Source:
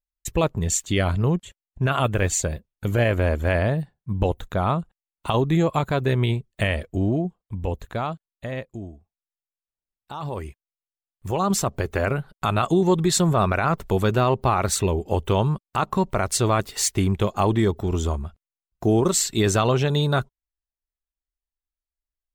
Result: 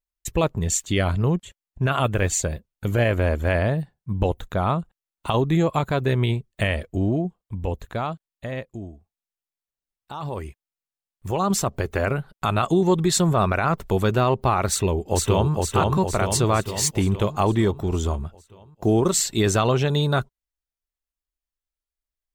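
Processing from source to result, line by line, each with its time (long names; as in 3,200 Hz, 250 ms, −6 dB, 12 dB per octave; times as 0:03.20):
0:14.69–0:15.52: delay throw 460 ms, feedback 60%, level −2 dB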